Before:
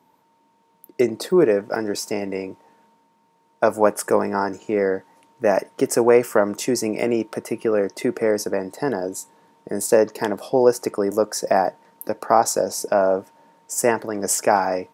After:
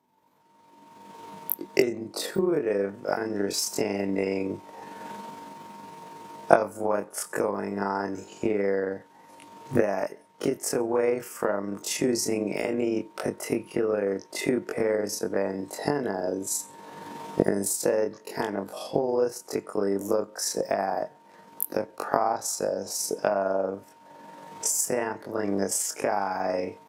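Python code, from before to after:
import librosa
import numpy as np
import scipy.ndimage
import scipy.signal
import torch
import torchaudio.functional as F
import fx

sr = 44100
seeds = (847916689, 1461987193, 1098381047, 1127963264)

y = fx.recorder_agc(x, sr, target_db=-6.0, rise_db_per_s=44.0, max_gain_db=30)
y = fx.stretch_grains(y, sr, factor=1.8, grain_ms=92.0)
y = y * 10.0 ** (-10.0 / 20.0)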